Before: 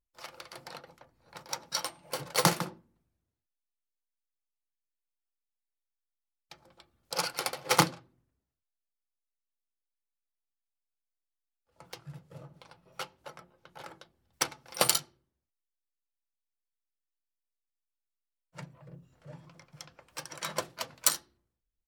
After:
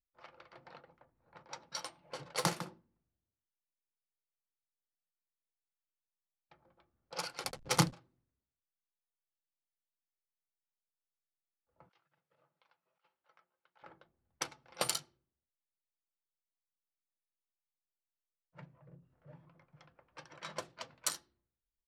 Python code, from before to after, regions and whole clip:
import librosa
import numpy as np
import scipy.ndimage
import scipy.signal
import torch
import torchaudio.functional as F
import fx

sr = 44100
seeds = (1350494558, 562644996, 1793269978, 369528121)

y = fx.chain(x, sr, fx.backlash(play_db=-35.5),
    fx.bass_treble(bass_db=10, treble_db=6), at=(7.44, 7.93))
y = fx.chain(y, sr, fx.over_compress(threshold_db=-47.0, ratio=-0.5),
    fx.bandpass_q(hz=5500.0, q=0.73), at=(11.89, 13.83))
y = fx.env_lowpass(y, sr, base_hz=1600.0, full_db=-28.5)
y = scipy.signal.sosfilt(scipy.signal.butter(2, 11000.0, 'lowpass', fs=sr, output='sos'), y)
y = F.gain(torch.from_numpy(y), -8.0).numpy()